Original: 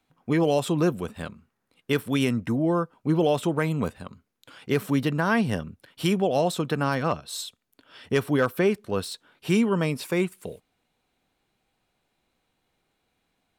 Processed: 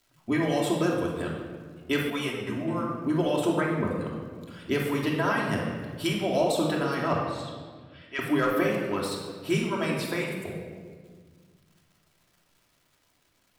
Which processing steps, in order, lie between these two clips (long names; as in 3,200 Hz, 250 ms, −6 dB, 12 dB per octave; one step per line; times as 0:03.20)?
0:03.60–0:04.01: spectral envelope exaggerated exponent 1.5
surface crackle 260 per second −48 dBFS
harmonic and percussive parts rebalanced harmonic −12 dB
0:07.25–0:08.19: resonant band-pass 2,200 Hz, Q 1.7
rectangular room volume 1,900 cubic metres, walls mixed, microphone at 2.9 metres
0:02.10–0:02.68: string-ensemble chorus
level −2.5 dB